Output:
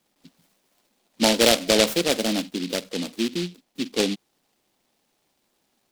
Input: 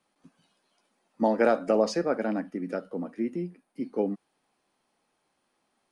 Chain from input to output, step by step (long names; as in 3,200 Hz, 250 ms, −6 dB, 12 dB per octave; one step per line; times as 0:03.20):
short delay modulated by noise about 3,400 Hz, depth 0.2 ms
level +4.5 dB